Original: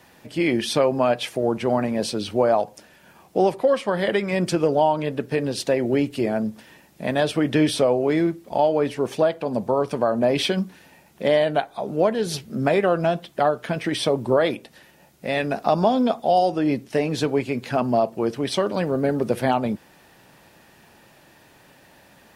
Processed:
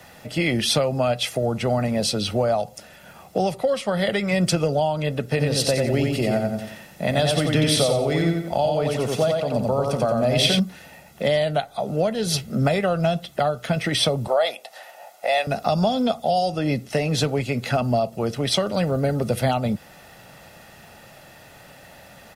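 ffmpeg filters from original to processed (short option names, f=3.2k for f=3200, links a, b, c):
-filter_complex "[0:a]asplit=3[a][b][c];[a]afade=t=out:st=5.38:d=0.02[d];[b]aecho=1:1:89|178|267|356|445:0.668|0.241|0.0866|0.0312|0.0112,afade=t=in:st=5.38:d=0.02,afade=t=out:st=10.58:d=0.02[e];[c]afade=t=in:st=10.58:d=0.02[f];[d][e][f]amix=inputs=3:normalize=0,asettb=1/sr,asplit=3[g][h][i];[g]atrim=end=14.274[j];[h]atrim=start=14.27:end=15.47,asetpts=PTS-STARTPTS,afade=t=in:d=0.004:c=qsin,afade=t=out:st=1.196:d=0.004:c=qsin,highpass=f=710:t=q:w=3.5[k];[i]atrim=start=15.466[l];[j][k]acrossfade=d=0.004:c1=hsin:c2=qsin[m];[m][l]acrossfade=d=0.004:c1=qsin:c2=hsin,aecho=1:1:1.5:0.49,acrossover=split=190|3000[n][o][p];[o]acompressor=threshold=-30dB:ratio=2.5[q];[n][q][p]amix=inputs=3:normalize=0,volume=5.5dB"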